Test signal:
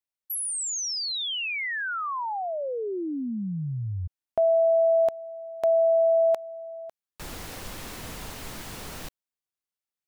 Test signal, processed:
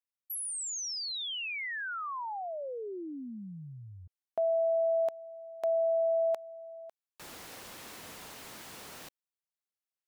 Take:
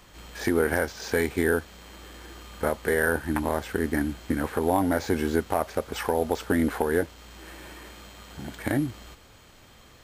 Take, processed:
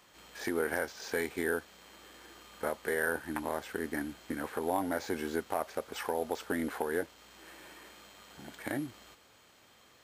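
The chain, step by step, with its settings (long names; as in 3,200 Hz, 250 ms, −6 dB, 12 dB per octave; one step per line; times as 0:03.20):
high-pass filter 330 Hz 6 dB per octave
level −6.5 dB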